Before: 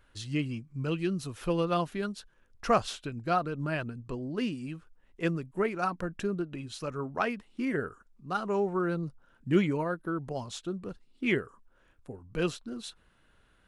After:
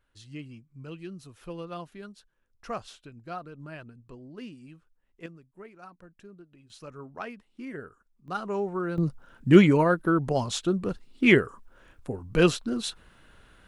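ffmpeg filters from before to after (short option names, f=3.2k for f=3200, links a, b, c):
-af "asetnsamples=n=441:p=0,asendcmd='5.26 volume volume -17.5dB;6.7 volume volume -8dB;8.28 volume volume -1dB;8.98 volume volume 9.5dB',volume=-10dB"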